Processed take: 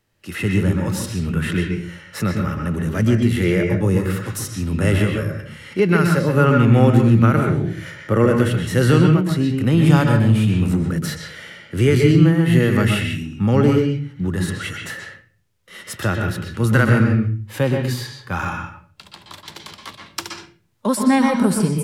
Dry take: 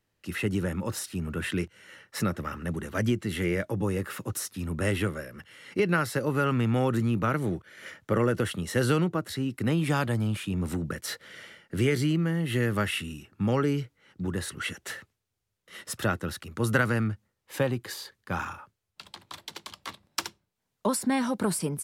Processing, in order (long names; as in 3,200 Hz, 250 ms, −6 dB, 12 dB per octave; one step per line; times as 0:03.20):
harmonic and percussive parts rebalanced harmonic +8 dB
convolution reverb RT60 0.40 s, pre-delay 120 ms, DRR 3 dB
level +2.5 dB